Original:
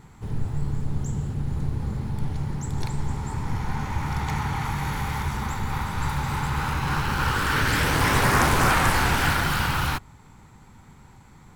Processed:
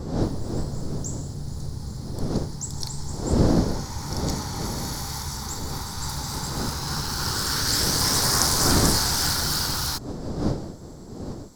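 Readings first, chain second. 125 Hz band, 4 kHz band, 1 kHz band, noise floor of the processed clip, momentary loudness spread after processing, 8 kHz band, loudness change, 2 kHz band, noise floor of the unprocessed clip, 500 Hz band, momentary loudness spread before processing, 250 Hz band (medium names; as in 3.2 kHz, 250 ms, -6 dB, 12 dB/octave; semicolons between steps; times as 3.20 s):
-2.0 dB, +6.5 dB, -6.0 dB, -38 dBFS, 15 LU, +9.5 dB, +0.5 dB, -8.5 dB, -50 dBFS, +2.0 dB, 11 LU, +2.5 dB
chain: wind noise 310 Hz -24 dBFS; resonant high shelf 3.6 kHz +11.5 dB, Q 3; trim -5.5 dB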